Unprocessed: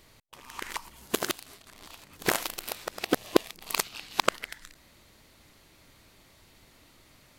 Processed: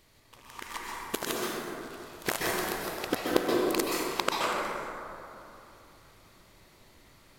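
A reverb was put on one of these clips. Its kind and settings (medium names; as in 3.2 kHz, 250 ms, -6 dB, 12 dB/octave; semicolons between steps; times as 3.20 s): plate-style reverb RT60 2.9 s, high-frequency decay 0.35×, pre-delay 115 ms, DRR -4.5 dB; trim -5 dB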